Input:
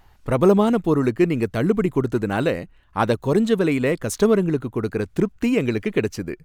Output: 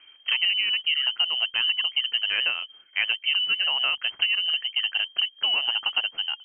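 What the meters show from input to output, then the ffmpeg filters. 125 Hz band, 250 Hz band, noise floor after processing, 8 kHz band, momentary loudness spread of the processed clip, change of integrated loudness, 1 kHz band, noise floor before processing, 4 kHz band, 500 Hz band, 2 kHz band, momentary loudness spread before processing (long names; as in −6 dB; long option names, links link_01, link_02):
below −40 dB, below −40 dB, −55 dBFS, below −40 dB, 4 LU, −2.0 dB, −11.5 dB, −53 dBFS, +20.0 dB, −30.0 dB, +6.0 dB, 7 LU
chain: -af "acompressor=threshold=-21dB:ratio=6,lowpass=frequency=2700:width_type=q:width=0.5098,lowpass=frequency=2700:width_type=q:width=0.6013,lowpass=frequency=2700:width_type=q:width=0.9,lowpass=frequency=2700:width_type=q:width=2.563,afreqshift=-3200"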